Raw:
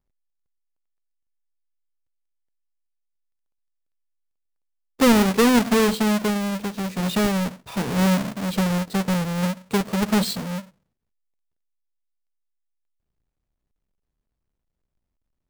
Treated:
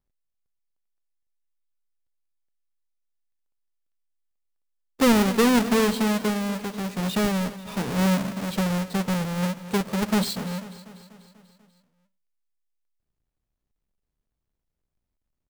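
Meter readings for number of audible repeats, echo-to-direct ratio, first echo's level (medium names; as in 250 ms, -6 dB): 5, -14.0 dB, -16.0 dB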